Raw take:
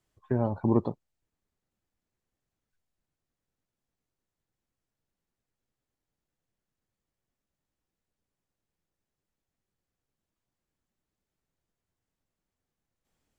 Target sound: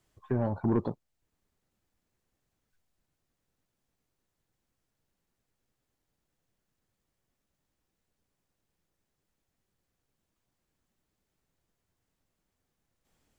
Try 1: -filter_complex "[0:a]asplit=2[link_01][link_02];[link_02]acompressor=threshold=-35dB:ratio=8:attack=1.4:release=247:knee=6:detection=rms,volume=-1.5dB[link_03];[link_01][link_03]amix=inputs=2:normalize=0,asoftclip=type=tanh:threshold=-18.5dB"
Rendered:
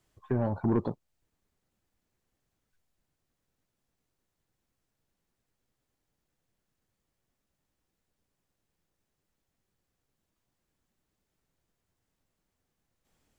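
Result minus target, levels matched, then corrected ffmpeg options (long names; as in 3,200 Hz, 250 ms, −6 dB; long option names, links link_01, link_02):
downward compressor: peak gain reduction −9.5 dB
-filter_complex "[0:a]asplit=2[link_01][link_02];[link_02]acompressor=threshold=-46dB:ratio=8:attack=1.4:release=247:knee=6:detection=rms,volume=-1.5dB[link_03];[link_01][link_03]amix=inputs=2:normalize=0,asoftclip=type=tanh:threshold=-18.5dB"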